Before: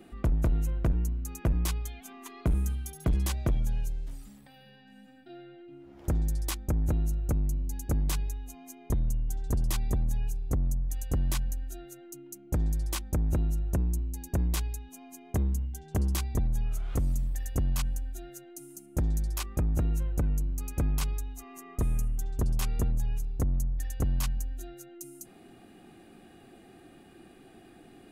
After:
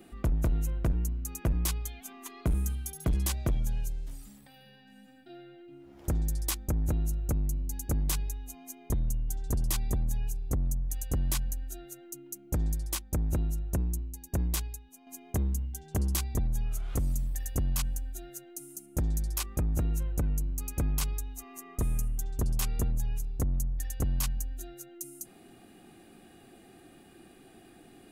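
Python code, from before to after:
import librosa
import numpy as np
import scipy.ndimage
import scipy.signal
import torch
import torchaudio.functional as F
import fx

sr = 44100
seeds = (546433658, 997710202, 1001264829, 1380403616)

y = fx.high_shelf(x, sr, hz=5000.0, db=7.0)
y = fx.upward_expand(y, sr, threshold_db=-40.0, expansion=1.5, at=(12.75, 15.07))
y = F.gain(torch.from_numpy(y), -1.5).numpy()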